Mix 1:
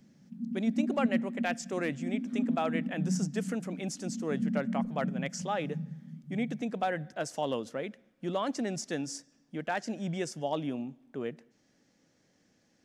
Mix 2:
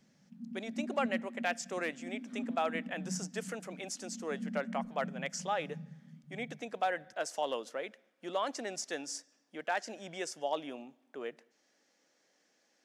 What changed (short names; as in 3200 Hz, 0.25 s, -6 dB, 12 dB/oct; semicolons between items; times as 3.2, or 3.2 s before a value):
speech: add HPF 490 Hz 12 dB/oct; background -8.5 dB